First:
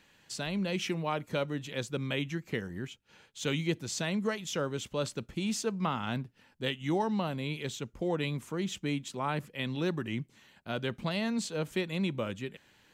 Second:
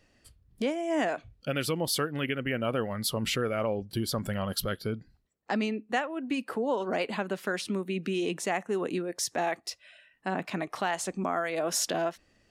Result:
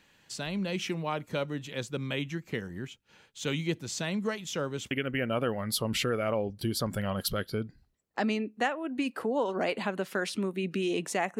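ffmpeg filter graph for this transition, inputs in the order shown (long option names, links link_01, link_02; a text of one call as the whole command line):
ffmpeg -i cue0.wav -i cue1.wav -filter_complex "[0:a]apad=whole_dur=11.39,atrim=end=11.39,atrim=end=4.912[link_01];[1:a]atrim=start=2.228:end=8.71[link_02];[link_01][link_02]acrossfade=duration=0.004:curve1=hsin:curve2=hsin" out.wav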